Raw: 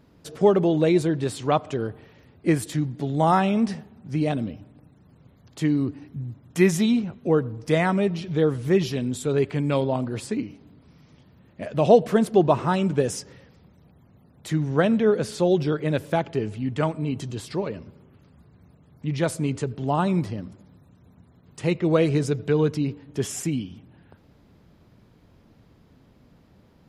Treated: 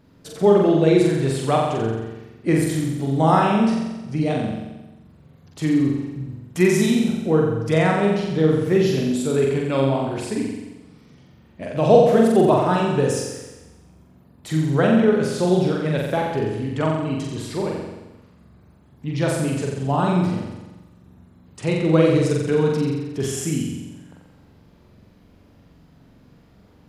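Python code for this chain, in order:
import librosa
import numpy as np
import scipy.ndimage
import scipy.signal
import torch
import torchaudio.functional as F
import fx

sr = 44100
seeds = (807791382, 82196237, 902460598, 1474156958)

y = fx.room_flutter(x, sr, wall_m=7.6, rt60_s=1.1)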